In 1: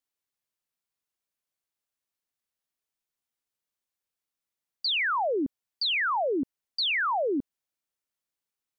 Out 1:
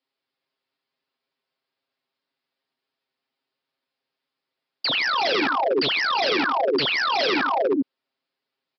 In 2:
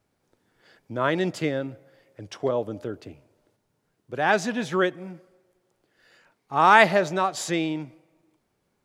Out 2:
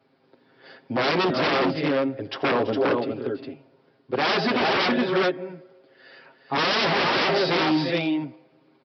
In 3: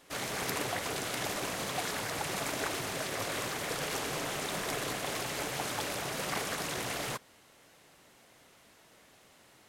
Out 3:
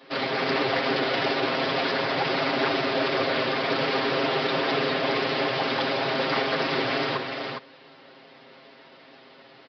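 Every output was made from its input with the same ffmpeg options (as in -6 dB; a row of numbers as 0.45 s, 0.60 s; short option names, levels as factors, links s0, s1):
-filter_complex "[0:a]acrossover=split=420[s0][s1];[s1]volume=11.2,asoftclip=hard,volume=0.0891[s2];[s0][s2]amix=inputs=2:normalize=0,aecho=1:1:7.5:0.89,aecho=1:1:86|330|355|410:0.106|0.168|0.2|0.501,aresample=11025,aeval=exprs='0.0631*(abs(mod(val(0)/0.0631+3,4)-2)-1)':c=same,aresample=44100,highpass=270,lowshelf=f=420:g=8,volume=2"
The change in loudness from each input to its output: +6.0 LU, 0.0 LU, +9.5 LU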